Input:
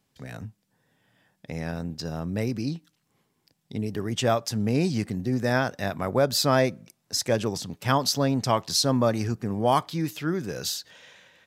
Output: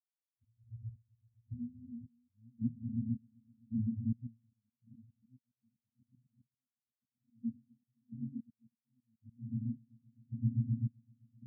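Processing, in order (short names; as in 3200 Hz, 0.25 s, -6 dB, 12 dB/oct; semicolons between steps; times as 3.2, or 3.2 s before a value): tape start at the beginning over 0.47 s; rotary speaker horn 0.7 Hz, later 6.3 Hz, at 2.74; dynamic EQ 210 Hz, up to +6 dB, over -41 dBFS, Q 1.7; on a send: swelling echo 0.129 s, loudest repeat 8, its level -11 dB; on the sum: compressor 16:1, threshold -36 dBFS, peak gain reduction 21 dB; Chebyshev band-stop 250–3500 Hz, order 4; octave resonator A#, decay 0.15 s; auto swell 0.186 s; tilt shelf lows +6 dB, about 710 Hz; auto swell 0.292 s; step gate "...xxxx." 109 bpm -12 dB; spectral expander 2.5:1; gain +11 dB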